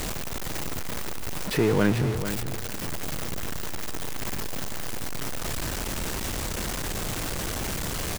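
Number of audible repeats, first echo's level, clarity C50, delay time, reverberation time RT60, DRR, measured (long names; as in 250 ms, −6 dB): 2, −10.0 dB, no reverb audible, 441 ms, no reverb audible, no reverb audible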